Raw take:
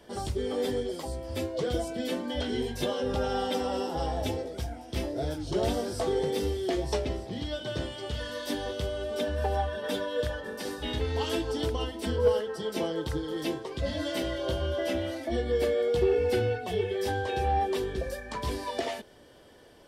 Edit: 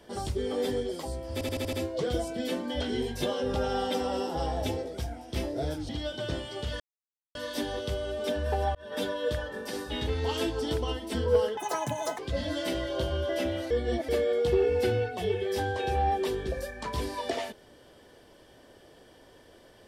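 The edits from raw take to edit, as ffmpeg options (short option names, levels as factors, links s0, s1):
-filter_complex "[0:a]asplit=13[s0][s1][s2][s3][s4][s5][s6][s7][s8][s9][s10][s11][s12];[s0]atrim=end=1.412[s13];[s1]atrim=start=1.328:end=1.412[s14];[s2]atrim=start=1.328:end=1.412[s15];[s3]atrim=start=1.328:end=1.412[s16];[s4]atrim=start=1.328:end=1.412[s17];[s5]atrim=start=1.328:end=5.492[s18];[s6]atrim=start=7.358:end=8.27,asetpts=PTS-STARTPTS,afade=t=out:st=0.908:d=0.004:c=hsin,apad=pad_dur=0.55[s19];[s7]atrim=start=8.27:end=9.67,asetpts=PTS-STARTPTS,afade=t=in:d=0.004:c=hsin,afade=t=out:st=1.396:d=0.004:c=hsin[s20];[s8]atrim=start=9.67:end=12.494,asetpts=PTS-STARTPTS,afade=t=in:d=0.26[s21];[s9]atrim=start=12.49:end=13.68,asetpts=PTS-STARTPTS,asetrate=85113,aresample=44100,atrim=end_sample=27191,asetpts=PTS-STARTPTS[s22];[s10]atrim=start=13.676:end=15.202[s23];[s11]atrim=start=15.198:end=15.582,asetpts=PTS-STARTPTS,areverse[s24];[s12]atrim=start=15.578[s25];[s13][s14]acrossfade=d=0.004:c1=hsin:c2=hsin[s26];[s26][s15]acrossfade=d=0.004:c1=hsin:c2=hsin[s27];[s27][s16]acrossfade=d=0.004:c1=hsin:c2=hsin[s28];[s28][s17]acrossfade=d=0.004:c1=hsin:c2=hsin[s29];[s29][s18]acrossfade=d=0.004:c1=hsin:c2=hsin[s30];[s19][s20][s21]concat=n=3:v=0:a=1[s31];[s30][s31]acrossfade=d=0.004:c1=hsin:c2=hsin[s32];[s32][s22]acrossfade=d=0.004:c1=hsin:c2=hsin[s33];[s33][s23]acrossfade=d=0.004:c1=hsin:c2=hsin[s34];[s34][s24]acrossfade=d=0.004:c1=hsin:c2=hsin[s35];[s35][s25]acrossfade=d=0.004:c1=hsin:c2=hsin"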